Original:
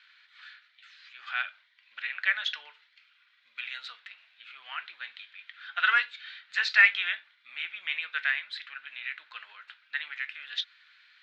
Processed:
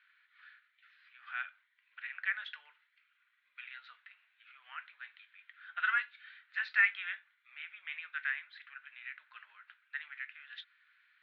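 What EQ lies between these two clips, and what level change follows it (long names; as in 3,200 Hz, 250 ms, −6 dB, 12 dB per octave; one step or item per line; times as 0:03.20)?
resonant band-pass 1,600 Hz, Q 1.2
high-frequency loss of the air 160 metres
−5.5 dB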